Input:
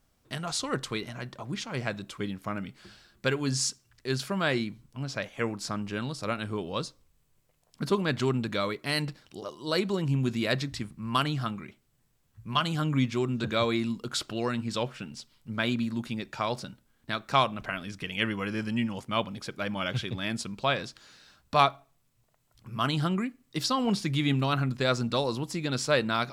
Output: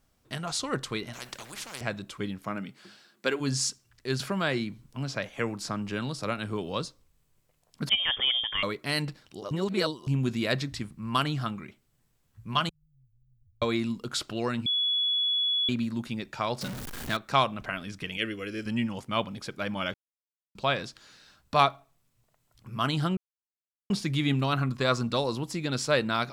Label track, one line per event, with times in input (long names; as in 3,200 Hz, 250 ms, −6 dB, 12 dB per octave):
1.130000	1.810000	every bin compressed towards the loudest bin 4 to 1
2.440000	3.390000	high-pass filter 110 Hz → 230 Hz 24 dB per octave
4.200000	6.850000	multiband upward and downward compressor depth 40%
7.890000	8.630000	voice inversion scrambler carrier 3,400 Hz
9.510000	10.070000	reverse
12.690000	13.620000	inverse Chebyshev band-stop filter 300–8,500 Hz, stop band 80 dB
14.660000	15.690000	beep over 3,390 Hz −23.5 dBFS
16.610000	17.170000	converter with a step at zero of −32 dBFS
18.170000	18.660000	phaser with its sweep stopped centre 380 Hz, stages 4
19.940000	20.550000	silence
23.170000	23.900000	silence
24.610000	25.090000	parametric band 1,100 Hz +11 dB 0.22 octaves